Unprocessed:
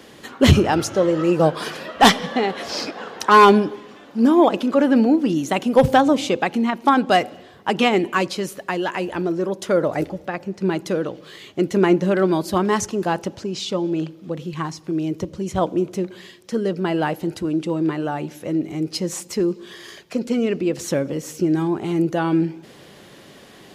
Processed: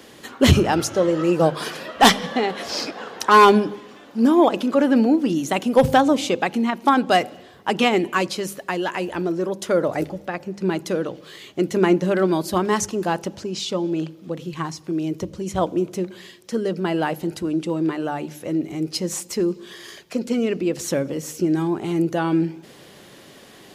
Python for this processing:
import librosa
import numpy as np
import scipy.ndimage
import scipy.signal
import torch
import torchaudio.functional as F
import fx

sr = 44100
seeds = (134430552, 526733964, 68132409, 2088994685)

y = fx.high_shelf(x, sr, hz=6100.0, db=4.5)
y = fx.hum_notches(y, sr, base_hz=50, count=4)
y = y * librosa.db_to_amplitude(-1.0)